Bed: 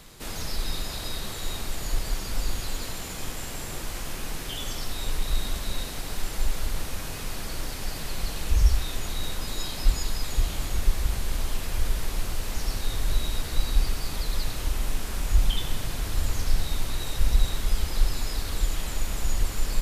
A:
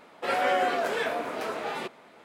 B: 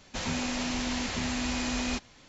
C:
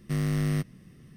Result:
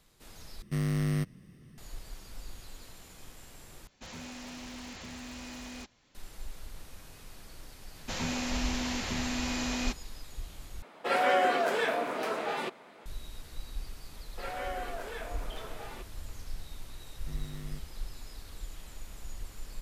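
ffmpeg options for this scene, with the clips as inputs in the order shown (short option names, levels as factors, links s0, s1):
-filter_complex "[3:a]asplit=2[s0][s1];[2:a]asplit=2[s2][s3];[1:a]asplit=2[s4][s5];[0:a]volume=0.15[s6];[s2]aeval=exprs='0.0473*(abs(mod(val(0)/0.0473+3,4)-2)-1)':c=same[s7];[s4]highpass=110[s8];[s6]asplit=4[s9][s10][s11][s12];[s9]atrim=end=0.624[s13];[s0]atrim=end=1.16,asetpts=PTS-STARTPTS,volume=0.75[s14];[s10]atrim=start=1.776:end=3.874[s15];[s7]atrim=end=2.28,asetpts=PTS-STARTPTS,volume=0.266[s16];[s11]atrim=start=6.146:end=10.824[s17];[s8]atrim=end=2.24,asetpts=PTS-STARTPTS,volume=0.944[s18];[s12]atrim=start=13.056[s19];[s3]atrim=end=2.28,asetpts=PTS-STARTPTS,volume=0.794,afade=t=in:d=0.004:c=hsin,afade=t=out:st=2.276:d=0.004:c=hsin,adelay=350154S[s20];[s5]atrim=end=2.24,asetpts=PTS-STARTPTS,volume=0.237,afade=t=in:d=0.004:c=hsin,afade=t=out:st=2.236:d=0.004:c=hsin,adelay=14150[s21];[s1]atrim=end=1.16,asetpts=PTS-STARTPTS,volume=0.133,afade=t=in:d=0.004:c=hsin,afade=t=out:st=1.156:d=0.004:c=hsin,adelay=17170[s22];[s13][s14]acrossfade=d=0.004:c1=hsin:c2=hsin[s23];[s23][s15]acrossfade=d=0.004:c1=hsin:c2=hsin[s24];[s24][s16]acrossfade=d=0.004:c1=hsin:c2=hsin[s25];[s25][s17]acrossfade=d=0.004:c1=hsin:c2=hsin[s26];[s26][s18]acrossfade=d=0.004:c1=hsin:c2=hsin[s27];[s27][s19]acrossfade=d=0.004:c1=hsin:c2=hsin[s28];[s28][s20][s21][s22]amix=inputs=4:normalize=0"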